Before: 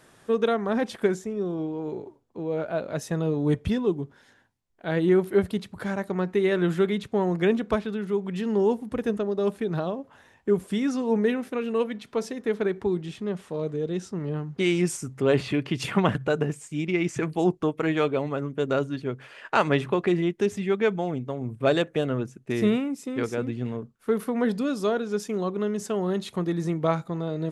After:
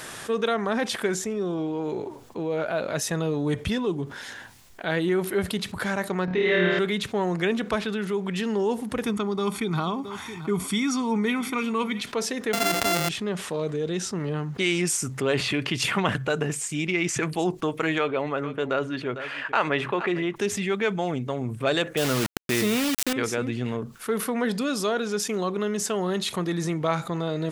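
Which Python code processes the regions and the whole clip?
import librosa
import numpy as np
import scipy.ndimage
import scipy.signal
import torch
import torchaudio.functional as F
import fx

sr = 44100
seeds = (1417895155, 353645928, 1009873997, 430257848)

y = fx.chain(x, sr, fx.lowpass(hz=4700.0, slope=24),
    fx.room_flutter(wall_m=4.7, rt60_s=1.5), at=(6.25, 6.79))
y = fx.chain(y, sr, fx.highpass(hz=59.0, slope=12),
    fx.comb(ms=0.9, depth=0.76),
    fx.echo_single(ms=670, db=-21.0), at=(9.04, 12.01))
y = fx.chain(y, sr, fx.sample_sort(block=64),
    fx.env_flatten(amount_pct=70), at=(12.53, 13.09))
y = fx.chain(y, sr, fx.bass_treble(bass_db=-6, treble_db=-13),
    fx.echo_single(ms=452, db=-21.0), at=(17.98, 20.36))
y = fx.chain(y, sr, fx.quant_dither(seeds[0], bits=6, dither='none'),
    fx.env_flatten(amount_pct=50), at=(21.97, 23.13))
y = fx.tilt_shelf(y, sr, db=-5.0, hz=930.0)
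y = fx.env_flatten(y, sr, amount_pct=50)
y = y * librosa.db_to_amplitude(-2.5)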